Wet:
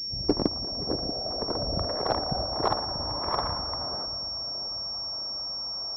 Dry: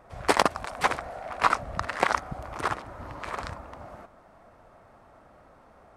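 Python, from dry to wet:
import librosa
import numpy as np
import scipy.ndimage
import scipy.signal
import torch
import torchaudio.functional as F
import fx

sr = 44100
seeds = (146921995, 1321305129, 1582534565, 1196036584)

y = fx.cvsd(x, sr, bps=64000)
y = fx.over_compress(y, sr, threshold_db=-27.0, ratio=-0.5, at=(0.68, 2.43))
y = fx.filter_sweep_lowpass(y, sr, from_hz=270.0, to_hz=1100.0, start_s=0.09, end_s=3.66, q=1.6)
y = fx.echo_split(y, sr, split_hz=630.0, low_ms=635, high_ms=116, feedback_pct=52, wet_db=-11.0)
y = fx.cheby_harmonics(y, sr, harmonics=(8,), levels_db=(-27,), full_scale_db=-11.0)
y = fx.pwm(y, sr, carrier_hz=5500.0)
y = y * 10.0 ** (3.5 / 20.0)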